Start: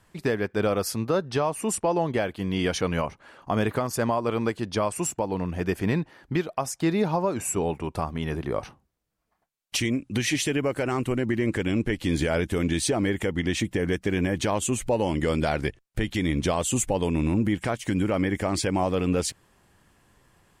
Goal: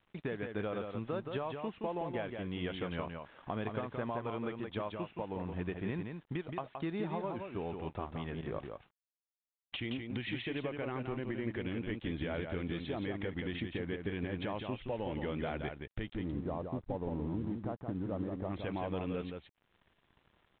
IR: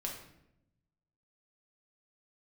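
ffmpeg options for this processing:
-filter_complex "[0:a]asplit=3[link_01][link_02][link_03];[link_01]afade=type=out:start_time=16.13:duration=0.02[link_04];[link_02]lowpass=frequency=1100:width=0.5412,lowpass=frequency=1100:width=1.3066,afade=type=in:start_time=16.13:duration=0.02,afade=type=out:start_time=18.49:duration=0.02[link_05];[link_03]afade=type=in:start_time=18.49:duration=0.02[link_06];[link_04][link_05][link_06]amix=inputs=3:normalize=0,acompressor=threshold=-47dB:ratio=2,aeval=exprs='sgn(val(0))*max(abs(val(0))-0.00141,0)':channel_layout=same,aecho=1:1:172:0.531,volume=1dB" -ar 8000 -c:a pcm_mulaw

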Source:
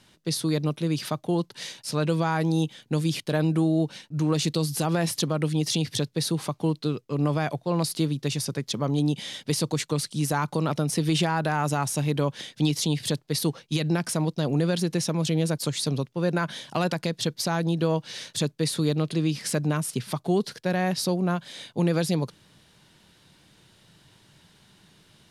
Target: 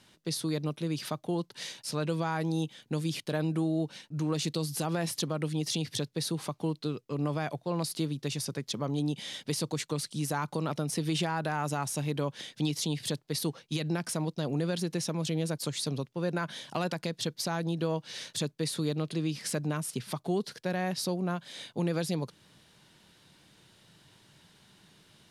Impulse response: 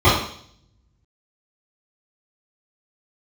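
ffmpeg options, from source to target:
-filter_complex "[0:a]lowshelf=frequency=91:gain=-5.5,asplit=2[link_01][link_02];[link_02]acompressor=threshold=-34dB:ratio=6,volume=-1.5dB[link_03];[link_01][link_03]amix=inputs=2:normalize=0,volume=-7.5dB"

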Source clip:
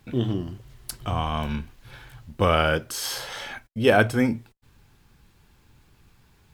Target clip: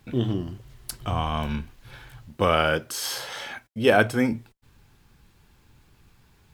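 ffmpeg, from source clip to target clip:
ffmpeg -i in.wav -filter_complex "[0:a]asettb=1/sr,asplit=3[link_01][link_02][link_03];[link_01]atrim=end=2.284[link_04];[link_02]atrim=start=2.28:end=4.32,asetpts=PTS-STARTPTS,afade=type=in:duration=0.004:curve=qsin,afade=type=out:start_time=2.036:duration=0.004:curve=qsin,highpass=frequency=130:poles=1[link_05];[link_03]atrim=start=4.316[link_06];[link_04][link_05]acrossfade=duration=0.004:curve1=hsin:curve2=qsin[link_07];[link_07][link_06]acrossfade=duration=0.004:curve1=qsin:curve2=hsin" out.wav

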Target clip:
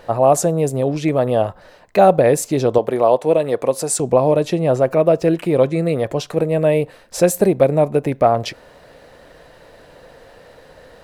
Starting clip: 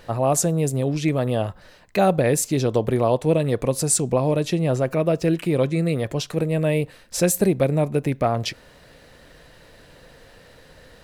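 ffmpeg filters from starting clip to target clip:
ffmpeg -i in.wav -filter_complex "[0:a]asettb=1/sr,asplit=3[link_01][link_02][link_03];[link_01]atrim=end=2.784[link_04];[link_02]atrim=start=2.78:end=4,asetpts=PTS-STARTPTS,afade=type=in:duration=0.004:curve=qsin,afade=type=out:start_time=1.216:duration=0.004:curve=qsin,highpass=frequency=340:poles=1[link_05];[link_03]atrim=start=3.996[link_06];[link_04][link_05]acrossfade=duration=0.004:curve1=hsin:curve2=qsin[link_07];[link_07][link_06]acrossfade=duration=0.004:curve1=qsin:curve2=hsin,equalizer=frequency=670:width=0.61:gain=9.5,volume=-1dB" out.wav

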